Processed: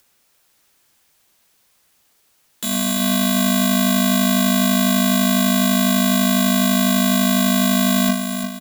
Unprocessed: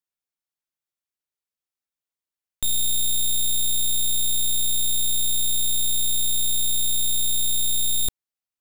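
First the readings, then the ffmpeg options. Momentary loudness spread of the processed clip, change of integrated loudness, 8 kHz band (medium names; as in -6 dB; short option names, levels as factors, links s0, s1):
3 LU, +5.0 dB, -1.0 dB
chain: -filter_complex "[0:a]acompressor=mode=upward:threshold=0.0141:ratio=2.5,asplit=2[s0][s1];[s1]aecho=0:1:346|692|1038|1384|1730:0.422|0.177|0.0744|0.0312|0.0131[s2];[s0][s2]amix=inputs=2:normalize=0,afreqshift=-26,aeval=exprs='val(0)*sgn(sin(2*PI*220*n/s))':c=same"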